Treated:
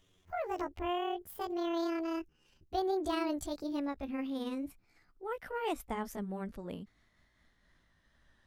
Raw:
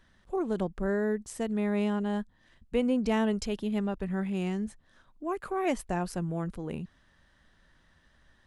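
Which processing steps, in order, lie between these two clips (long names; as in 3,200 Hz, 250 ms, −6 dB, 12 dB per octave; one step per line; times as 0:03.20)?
pitch glide at a constant tempo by +11 semitones ending unshifted
every ending faded ahead of time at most 550 dB per second
level −5 dB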